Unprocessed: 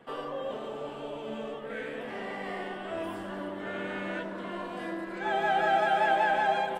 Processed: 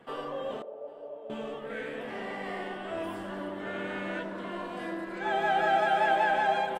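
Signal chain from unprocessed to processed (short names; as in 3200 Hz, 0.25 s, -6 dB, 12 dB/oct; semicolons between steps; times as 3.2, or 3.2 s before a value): 0.62–1.3 band-pass 560 Hz, Q 3.7; echo 0.8 s -24 dB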